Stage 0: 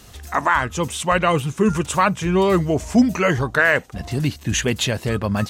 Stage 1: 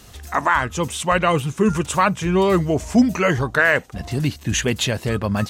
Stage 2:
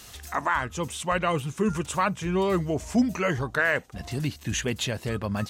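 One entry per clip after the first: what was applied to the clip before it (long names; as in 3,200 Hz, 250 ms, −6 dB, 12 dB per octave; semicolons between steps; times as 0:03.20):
no processing that can be heard
one half of a high-frequency compander encoder only; level −7.5 dB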